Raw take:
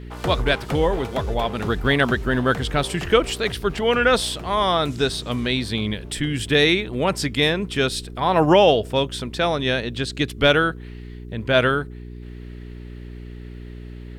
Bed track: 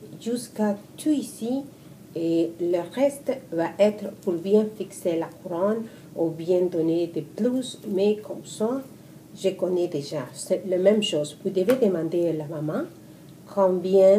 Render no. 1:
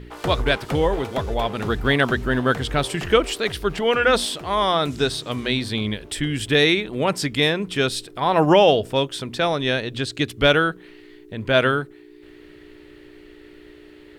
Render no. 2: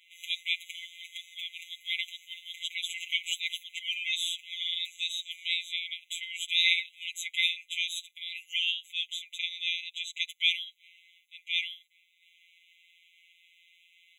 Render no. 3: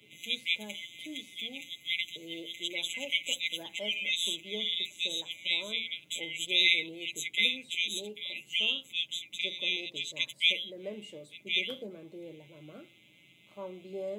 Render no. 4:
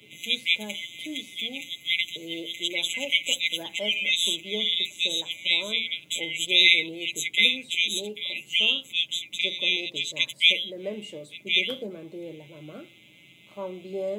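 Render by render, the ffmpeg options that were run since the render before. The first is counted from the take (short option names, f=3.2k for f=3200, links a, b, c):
-af "bandreject=f=60:t=h:w=4,bandreject=f=120:t=h:w=4,bandreject=f=180:t=h:w=4,bandreject=f=240:t=h:w=4"
-af "afftfilt=real='hypot(re,im)*cos(PI*b)':imag='0':win_size=1024:overlap=0.75,afftfilt=real='re*eq(mod(floor(b*sr/1024/2000),2),1)':imag='im*eq(mod(floor(b*sr/1024/2000),2),1)':win_size=1024:overlap=0.75"
-filter_complex "[1:a]volume=-22dB[a];[0:a][a]amix=inputs=2:normalize=0"
-af "volume=7dB"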